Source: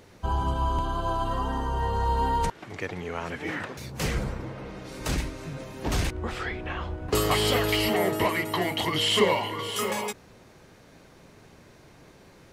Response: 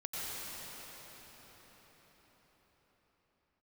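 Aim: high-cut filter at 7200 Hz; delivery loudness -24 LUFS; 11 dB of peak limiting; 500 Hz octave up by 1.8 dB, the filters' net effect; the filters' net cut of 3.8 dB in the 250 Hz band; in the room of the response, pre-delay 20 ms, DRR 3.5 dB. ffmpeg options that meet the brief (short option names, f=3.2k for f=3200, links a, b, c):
-filter_complex "[0:a]lowpass=7.2k,equalizer=f=250:t=o:g=-7.5,equalizer=f=500:t=o:g=4.5,alimiter=limit=-19.5dB:level=0:latency=1,asplit=2[a][b];[1:a]atrim=start_sample=2205,adelay=20[c];[b][c]afir=irnorm=-1:irlink=0,volume=-7.5dB[d];[a][d]amix=inputs=2:normalize=0,volume=5dB"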